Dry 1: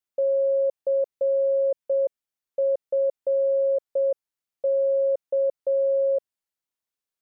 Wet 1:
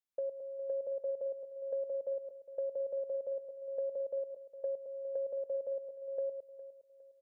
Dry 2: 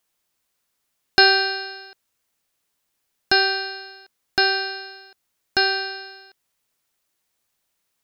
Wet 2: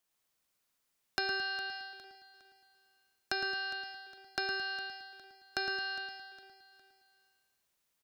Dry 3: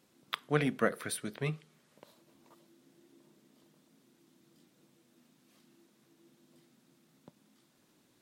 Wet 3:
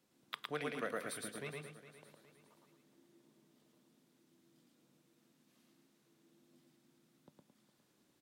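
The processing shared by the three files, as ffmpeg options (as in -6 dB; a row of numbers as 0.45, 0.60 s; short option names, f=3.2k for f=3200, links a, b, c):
-filter_complex "[0:a]asplit=2[a][b];[b]aecho=0:1:110.8|218.7:0.794|0.316[c];[a][c]amix=inputs=2:normalize=0,acrossover=split=310|2800[d][e][f];[d]acompressor=threshold=-46dB:ratio=4[g];[e]acompressor=threshold=-28dB:ratio=4[h];[f]acompressor=threshold=-34dB:ratio=4[i];[g][h][i]amix=inputs=3:normalize=0,asplit=2[j][k];[k]aecho=0:1:409|818|1227:0.188|0.0697|0.0258[l];[j][l]amix=inputs=2:normalize=0,volume=-8dB"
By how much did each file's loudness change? -14.5, -17.0, -9.0 LU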